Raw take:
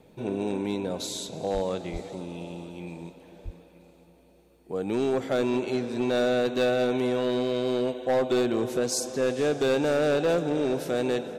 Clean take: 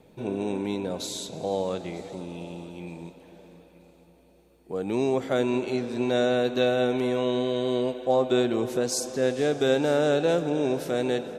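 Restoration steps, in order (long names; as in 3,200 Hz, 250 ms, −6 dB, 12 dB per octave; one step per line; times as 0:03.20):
clipped peaks rebuilt −19 dBFS
0:01.53–0:01.65: high-pass filter 140 Hz 24 dB per octave
0:01.92–0:02.04: high-pass filter 140 Hz 24 dB per octave
0:03.44–0:03.56: high-pass filter 140 Hz 24 dB per octave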